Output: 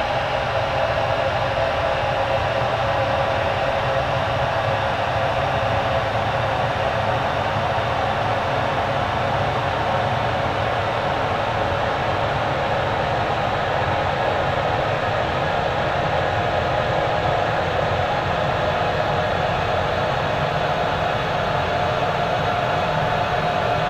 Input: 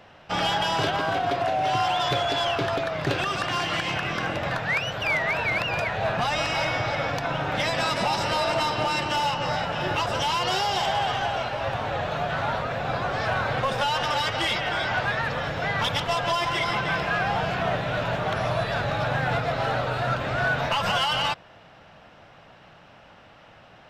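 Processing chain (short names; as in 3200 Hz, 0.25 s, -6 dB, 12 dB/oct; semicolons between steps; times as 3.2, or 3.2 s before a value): Paulstretch 40×, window 0.50 s, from 11.58; speakerphone echo 0.29 s, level -12 dB; gain +7 dB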